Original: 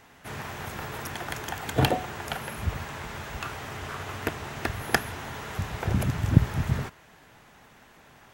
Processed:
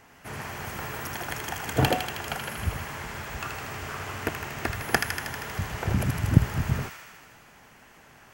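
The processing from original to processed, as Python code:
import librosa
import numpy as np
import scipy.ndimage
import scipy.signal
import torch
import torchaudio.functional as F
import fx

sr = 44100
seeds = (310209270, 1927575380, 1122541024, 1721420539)

y = fx.peak_eq(x, sr, hz=3700.0, db=-7.5, octaves=0.24)
y = fx.echo_wet_highpass(y, sr, ms=79, feedback_pct=73, hz=1600.0, wet_db=-3.5)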